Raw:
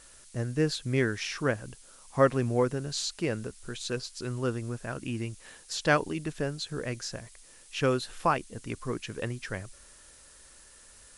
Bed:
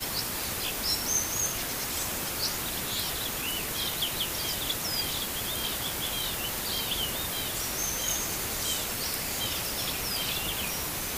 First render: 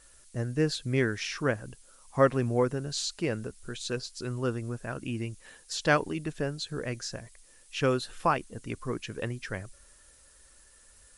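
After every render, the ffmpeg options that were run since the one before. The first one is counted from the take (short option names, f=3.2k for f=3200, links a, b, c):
-af "afftdn=nr=6:nf=-54"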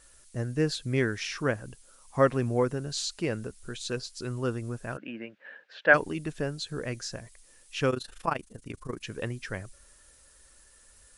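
-filter_complex "[0:a]asplit=3[a][b][c];[a]afade=t=out:st=4.96:d=0.02[d];[b]highpass=f=220:w=0.5412,highpass=f=220:w=1.3066,equalizer=f=250:t=q:w=4:g=-3,equalizer=f=360:t=q:w=4:g=-6,equalizer=f=570:t=q:w=4:g=7,equalizer=f=1.1k:t=q:w=4:g=-4,equalizer=f=1.6k:t=q:w=4:g=10,lowpass=f=2.8k:w=0.5412,lowpass=f=2.8k:w=1.3066,afade=t=in:st=4.96:d=0.02,afade=t=out:st=5.93:d=0.02[e];[c]afade=t=in:st=5.93:d=0.02[f];[d][e][f]amix=inputs=3:normalize=0,asettb=1/sr,asplit=3[g][h][i];[g]atrim=end=7.904[j];[h]atrim=start=7.9:end=9.03,asetpts=PTS-STARTPTS,afade=t=in:d=0.004:c=qsin,afade=t=out:st=1.126:d=0.004:c=qsin,tremolo=f=26:d=0.857[k];[i]atrim=start=9.026[l];[j][k]acrossfade=d=0.004:c1=hsin:c2=qsin[m];[m][l]acrossfade=d=0.004:c1=qsin:c2=hsin"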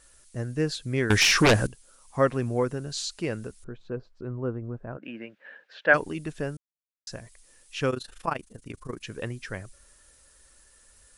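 -filter_complex "[0:a]asettb=1/sr,asplit=3[a][b][c];[a]atrim=end=1.104[d];[b]atrim=start=1.1:end=1.67,asetpts=PTS-STARTPTS,afade=t=in:d=0.004:c=qsin,afade=t=out:st=0.566:d=0.004:c=qsin,aeval=exprs='0.211*sin(PI/2*4.47*val(0)/0.211)':c=same[e];[c]atrim=start=1.666[f];[d][e]acrossfade=d=0.004:c1=hsin:c2=qsin[g];[g][f]acrossfade=d=0.004:c1=qsin:c2=hsin,asettb=1/sr,asplit=3[h][i][j];[h]atrim=end=3.644[k];[i]atrim=start=3.64:end=5.03,asetpts=PTS-STARTPTS,afade=t=in:d=0.004:c=qsin,afade=t=out:st=1.386:d=0.004:c=qsin,lowpass=1k[l];[j]atrim=start=5.026[m];[k][l]acrossfade=d=0.004:c1=hsin:c2=qsin[n];[n][m]acrossfade=d=0.004:c1=qsin:c2=hsin,asplit=3[o][p][q];[o]atrim=end=6.57,asetpts=PTS-STARTPTS,afade=t=out:st=6.566:d=0.004:c=hsin[r];[p]atrim=start=6.57:end=7.07,asetpts=PTS-STARTPTS,volume=0[s];[q]atrim=start=7.07,asetpts=PTS-STARTPTS,afade=t=in:d=0.004:c=hsin[t];[r][s][t]concat=n=3:v=0:a=1"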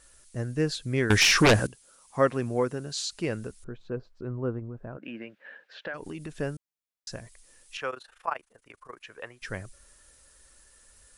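-filter_complex "[0:a]asettb=1/sr,asplit=3[a][b][c];[a]atrim=end=1.594[d];[b]atrim=start=1.59:end=3.13,asetpts=PTS-STARTPTS,afade=t=in:d=0.004:c=qsin,afade=t=out:st=1.536:d=0.004:c=qsin,highpass=f=140:p=1[e];[c]atrim=start=3.126[f];[d][e]acrossfade=d=0.004:c1=hsin:c2=qsin[g];[g][f]acrossfade=d=0.004:c1=qsin:c2=hsin,asettb=1/sr,asplit=3[h][i][j];[h]atrim=end=4.594[k];[i]atrim=start=4.59:end=6.34,asetpts=PTS-STARTPTS,afade=t=in:d=0.004:c=qsin,afade=t=out:st=1.746:d=0.004:c=qsin,acompressor=threshold=-33dB:ratio=6:attack=3.2:release=140:knee=1:detection=peak[l];[j]atrim=start=6.336[m];[k][l]acrossfade=d=0.004:c1=hsin:c2=qsin[n];[n][m]acrossfade=d=0.004:c1=qsin:c2=hsin,asettb=1/sr,asplit=3[o][p][q];[o]atrim=end=7.774[r];[p]atrim=start=7.77:end=9.42,asetpts=PTS-STARTPTS,afade=t=in:d=0.004:c=qsin,afade=t=out:st=1.646:d=0.004:c=qsin,acrossover=split=550 2500:gain=0.0794 1 0.251[s][t][u];[s][t][u]amix=inputs=3:normalize=0[v];[q]atrim=start=9.416[w];[r][v]acrossfade=d=0.004:c1=hsin:c2=qsin[x];[x][w]acrossfade=d=0.004:c1=qsin:c2=hsin"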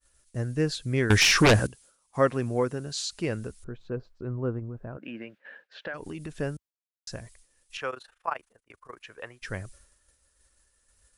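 -af "equalizer=f=66:t=o:w=1.5:g=5,agate=range=-33dB:threshold=-48dB:ratio=3:detection=peak"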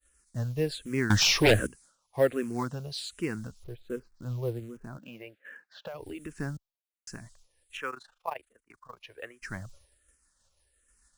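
-filter_complex "[0:a]acrusher=bits=6:mode=log:mix=0:aa=0.000001,asplit=2[a][b];[b]afreqshift=-1.3[c];[a][c]amix=inputs=2:normalize=1"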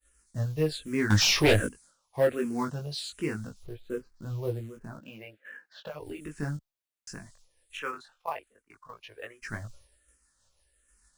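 -filter_complex "[0:a]flanger=delay=18.5:depth=2.3:speed=0.21,asplit=2[a][b];[b]volume=25dB,asoftclip=hard,volume=-25dB,volume=-5dB[c];[a][c]amix=inputs=2:normalize=0"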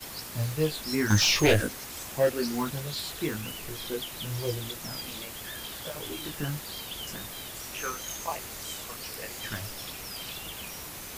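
-filter_complex "[1:a]volume=-8dB[a];[0:a][a]amix=inputs=2:normalize=0"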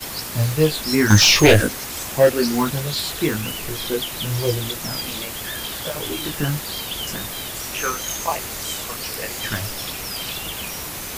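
-af "volume=10dB,alimiter=limit=-1dB:level=0:latency=1"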